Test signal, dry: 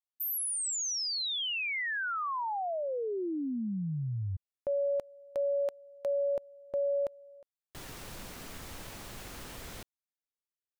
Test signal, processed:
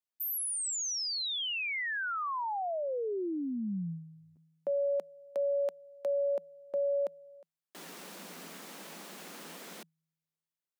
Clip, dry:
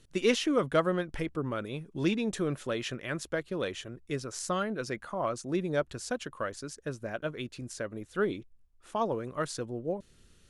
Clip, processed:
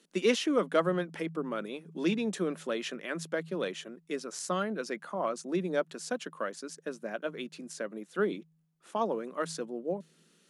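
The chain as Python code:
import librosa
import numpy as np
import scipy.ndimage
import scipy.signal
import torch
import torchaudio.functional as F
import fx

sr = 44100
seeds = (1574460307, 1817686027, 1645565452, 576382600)

y = scipy.signal.sosfilt(scipy.signal.ellip(8, 1.0, 40, 160.0, 'highpass', fs=sr, output='sos'), x)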